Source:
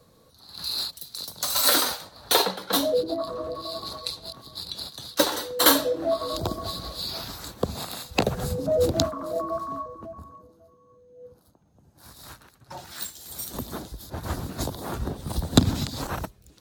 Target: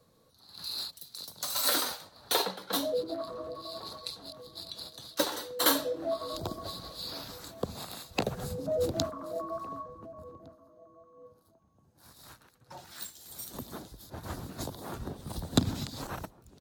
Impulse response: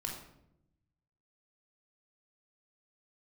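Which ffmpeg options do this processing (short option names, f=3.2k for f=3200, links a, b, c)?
-filter_complex "[0:a]equalizer=f=60:w=2.5:g=-7.5,asplit=2[a][b];[b]adelay=1458,volume=-19dB,highshelf=f=4k:g=-32.8[c];[a][c]amix=inputs=2:normalize=0,volume=-7.5dB"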